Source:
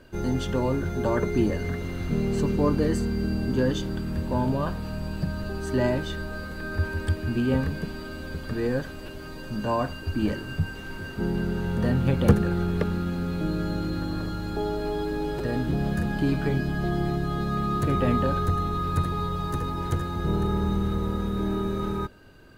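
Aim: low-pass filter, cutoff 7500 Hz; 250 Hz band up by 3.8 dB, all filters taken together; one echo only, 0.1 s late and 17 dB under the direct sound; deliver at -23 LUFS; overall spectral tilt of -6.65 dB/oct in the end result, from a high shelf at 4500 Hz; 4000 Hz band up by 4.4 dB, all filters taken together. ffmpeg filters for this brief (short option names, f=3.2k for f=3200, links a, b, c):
-af "lowpass=7.5k,equalizer=f=250:t=o:g=5,equalizer=f=4k:t=o:g=8.5,highshelf=f=4.5k:g=-6,aecho=1:1:100:0.141,volume=2dB"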